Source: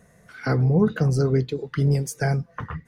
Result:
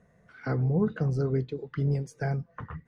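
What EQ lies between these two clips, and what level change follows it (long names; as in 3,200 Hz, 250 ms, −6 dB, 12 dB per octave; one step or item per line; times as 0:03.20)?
high-frequency loss of the air 51 metres
high-shelf EQ 3,200 Hz −9 dB
−6.5 dB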